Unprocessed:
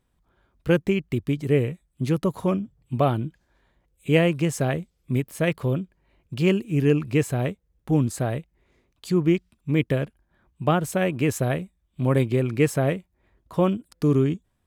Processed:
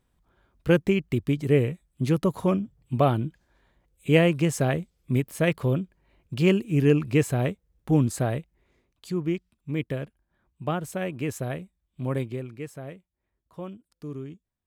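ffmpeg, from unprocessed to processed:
-af "afade=t=out:st=8.23:d=0.92:silence=0.446684,afade=t=out:st=12.14:d=0.43:silence=0.334965"

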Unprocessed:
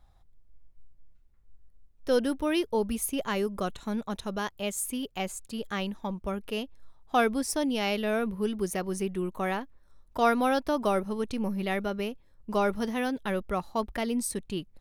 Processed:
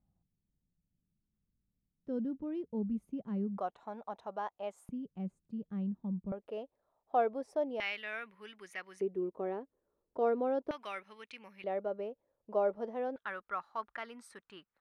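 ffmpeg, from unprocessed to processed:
-af "asetnsamples=n=441:p=0,asendcmd='3.58 bandpass f 770;4.89 bandpass f 180;6.32 bandpass f 600;7.8 bandpass f 2000;9.01 bandpass f 430;10.71 bandpass f 2200;11.64 bandpass f 570;13.16 bandpass f 1400',bandpass=f=190:t=q:w=2.7:csg=0"

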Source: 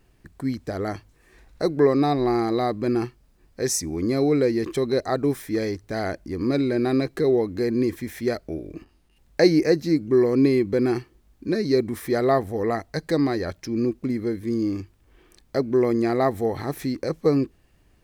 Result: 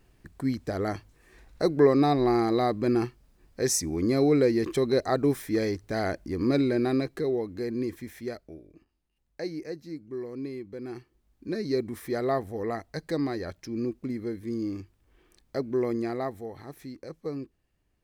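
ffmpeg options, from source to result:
-af "volume=9dB,afade=t=out:st=6.6:d=0.7:silence=0.473151,afade=t=out:st=8.03:d=0.68:silence=0.334965,afade=t=in:st=10.81:d=0.82:silence=0.298538,afade=t=out:st=15.93:d=0.53:silence=0.421697"

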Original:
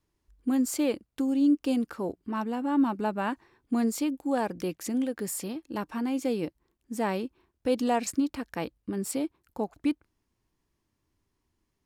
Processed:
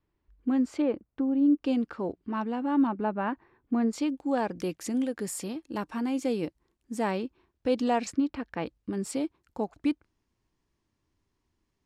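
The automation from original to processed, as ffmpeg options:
-af "asetnsamples=n=441:p=0,asendcmd='0.82 lowpass f 1500;1.62 lowpass f 3900;2.87 lowpass f 2100;3.93 lowpass f 5400;4.56 lowpass f 10000;7.11 lowpass f 5800;8.13 lowpass f 3200;8.66 lowpass f 7600',lowpass=2.8k"

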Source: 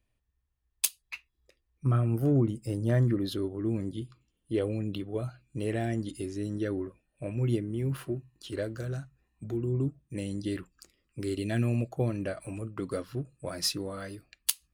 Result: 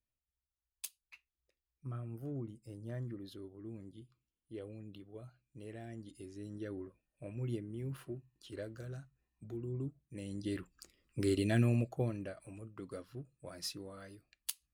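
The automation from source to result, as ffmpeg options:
-af "volume=1dB,afade=t=in:st=5.86:d=1.01:silence=0.473151,afade=t=in:st=10.19:d=1.07:silence=0.266073,afade=t=out:st=11.26:d=1.08:silence=0.223872"

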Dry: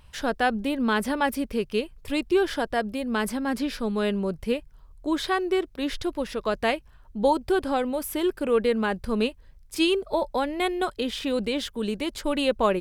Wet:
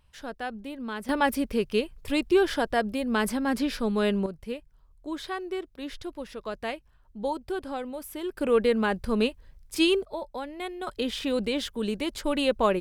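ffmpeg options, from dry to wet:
-af "asetnsamples=n=441:p=0,asendcmd='1.09 volume volume 0.5dB;4.26 volume volume -8.5dB;8.37 volume volume 0dB;10.05 volume volume -9.5dB;10.87 volume volume -1dB',volume=-11dB"

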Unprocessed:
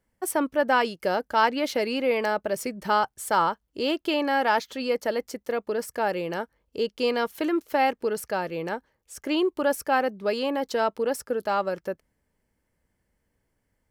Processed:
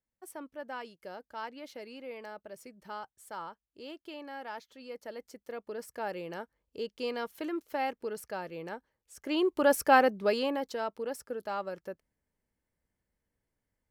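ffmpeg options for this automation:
-af "volume=2dB,afade=t=in:st=4.8:d=1.32:silence=0.354813,afade=t=in:st=9.18:d=0.72:silence=0.251189,afade=t=out:st=9.9:d=0.86:silence=0.251189"

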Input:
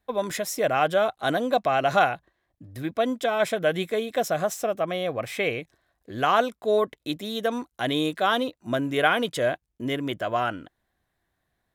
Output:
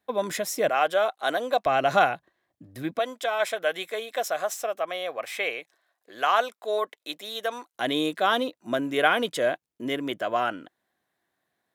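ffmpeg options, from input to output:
-af "asetnsamples=n=441:p=0,asendcmd='0.69 highpass f 450;1.66 highpass f 150;2.99 highpass f 610;7.75 highpass f 220',highpass=160"

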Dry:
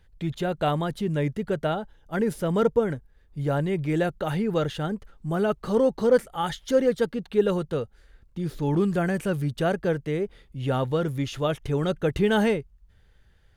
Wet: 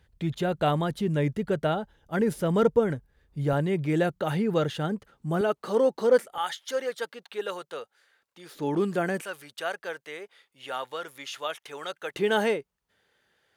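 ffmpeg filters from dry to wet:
-af "asetnsamples=n=441:p=0,asendcmd='3.53 highpass f 110;5.41 highpass f 320;6.38 highpass f 790;8.55 highpass f 260;9.22 highpass f 920;12.14 highpass f 340',highpass=53"

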